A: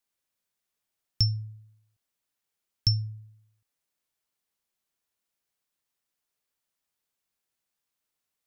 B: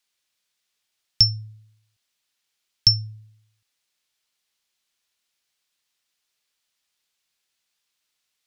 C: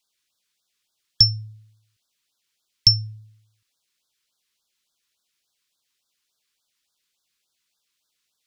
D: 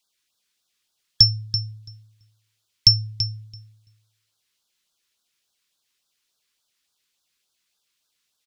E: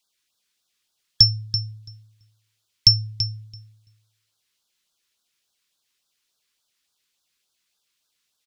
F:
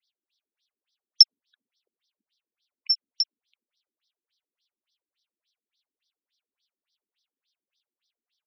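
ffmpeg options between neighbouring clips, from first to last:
ffmpeg -i in.wav -af "equalizer=frequency=3800:width_type=o:width=2.7:gain=12.5" out.wav
ffmpeg -i in.wav -af "afftfilt=real='re*(1-between(b*sr/1024,600*pow(2400/600,0.5+0.5*sin(2*PI*3.5*pts/sr))/1.41,600*pow(2400/600,0.5+0.5*sin(2*PI*3.5*pts/sr))*1.41))':imag='im*(1-between(b*sr/1024,600*pow(2400/600,0.5+0.5*sin(2*PI*3.5*pts/sr))/1.41,600*pow(2400/600,0.5+0.5*sin(2*PI*3.5*pts/sr))*1.41))':win_size=1024:overlap=0.75,volume=1.5dB" out.wav
ffmpeg -i in.wav -filter_complex "[0:a]asplit=2[link_01][link_02];[link_02]adelay=334,lowpass=frequency=3500:poles=1,volume=-7dB,asplit=2[link_03][link_04];[link_04]adelay=334,lowpass=frequency=3500:poles=1,volume=0.15,asplit=2[link_05][link_06];[link_06]adelay=334,lowpass=frequency=3500:poles=1,volume=0.15[link_07];[link_01][link_03][link_05][link_07]amix=inputs=4:normalize=0,volume=1dB" out.wav
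ffmpeg -i in.wav -af anull out.wav
ffmpeg -i in.wav -af "afftfilt=real='re*between(b*sr/1024,270*pow(4400/270,0.5+0.5*sin(2*PI*3.5*pts/sr))/1.41,270*pow(4400/270,0.5+0.5*sin(2*PI*3.5*pts/sr))*1.41)':imag='im*between(b*sr/1024,270*pow(4400/270,0.5+0.5*sin(2*PI*3.5*pts/sr))/1.41,270*pow(4400/270,0.5+0.5*sin(2*PI*3.5*pts/sr))*1.41)':win_size=1024:overlap=0.75,volume=1dB" out.wav

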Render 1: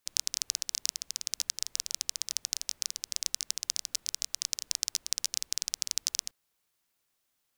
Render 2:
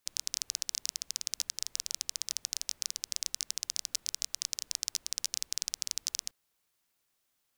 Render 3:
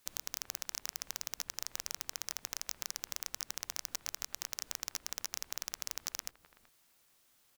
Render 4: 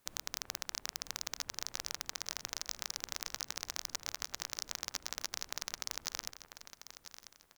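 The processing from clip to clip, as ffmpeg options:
ffmpeg -i in.wav -af "alimiter=limit=-10dB:level=0:latency=1:release=13" out.wav
ffmpeg -i in.wav -filter_complex "[0:a]acompressor=threshold=-36dB:ratio=5,acrossover=split=1800[link_01][link_02];[link_01]aecho=1:1:379:0.398[link_03];[link_02]aeval=exprs='0.0531*(abs(mod(val(0)/0.0531+3,4)-2)-1)':channel_layout=same[link_04];[link_03][link_04]amix=inputs=2:normalize=0,volume=8.5dB" out.wav
ffmpeg -i in.wav -filter_complex "[0:a]asplit=2[link_01][link_02];[link_02]adynamicsmooth=sensitivity=5.5:basefreq=2100,volume=3dB[link_03];[link_01][link_03]amix=inputs=2:normalize=0,aecho=1:1:993|1986|2979:0.251|0.0804|0.0257,volume=-4dB" out.wav

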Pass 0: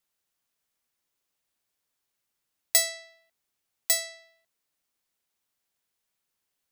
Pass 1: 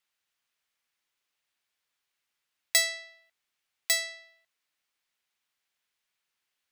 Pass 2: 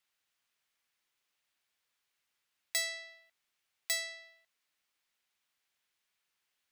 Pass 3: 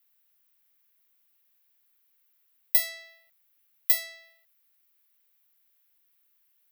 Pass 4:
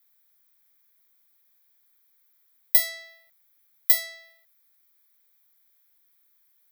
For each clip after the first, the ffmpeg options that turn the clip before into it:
ffmpeg -i in.wav -af "equalizer=frequency=2300:width_type=o:width=2.8:gain=11.5,volume=-7dB" out.wav
ffmpeg -i in.wav -af "alimiter=limit=-18dB:level=0:latency=1:release=376" out.wav
ffmpeg -i in.wav -af "aexciter=amount=10.6:drive=3.3:freq=11000" out.wav
ffmpeg -i in.wav -af "asuperstop=centerf=2800:order=4:qfactor=5,volume=3.5dB" out.wav

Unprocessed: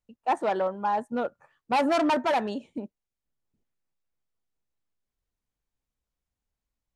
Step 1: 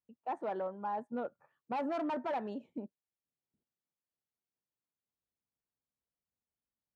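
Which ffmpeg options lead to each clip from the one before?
ffmpeg -i in.wav -af "lowpass=frequency=1300:poles=1,alimiter=limit=-23dB:level=0:latency=1:release=279,highpass=110,volume=-6.5dB" out.wav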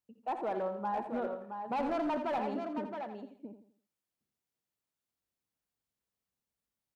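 ffmpeg -i in.wav -filter_complex "[0:a]asplit=2[link_01][link_02];[link_02]aecho=0:1:64|139|670:0.224|0.106|0.447[link_03];[link_01][link_03]amix=inputs=2:normalize=0,aeval=exprs='clip(val(0),-1,0.0251)':channel_layout=same,asplit=2[link_04][link_05];[link_05]aecho=0:1:84|168|252|336:0.316|0.111|0.0387|0.0136[link_06];[link_04][link_06]amix=inputs=2:normalize=0,volume=2dB" out.wav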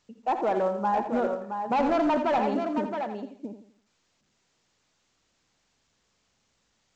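ffmpeg -i in.wav -af "volume=9dB" -ar 16000 -c:a pcm_alaw out.wav

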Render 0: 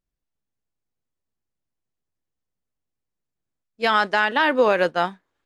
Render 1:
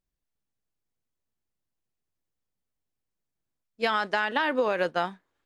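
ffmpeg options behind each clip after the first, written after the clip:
ffmpeg -i in.wav -af "acompressor=threshold=-20dB:ratio=6,volume=-1.5dB" out.wav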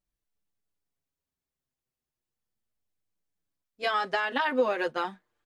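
ffmpeg -i in.wav -filter_complex "[0:a]asplit=2[link_01][link_02];[link_02]adelay=6.3,afreqshift=-0.37[link_03];[link_01][link_03]amix=inputs=2:normalize=1,volume=1.5dB" out.wav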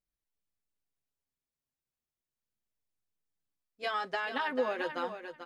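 ffmpeg -i in.wav -af "aecho=1:1:440|880:0.355|0.0568,volume=-6dB" out.wav

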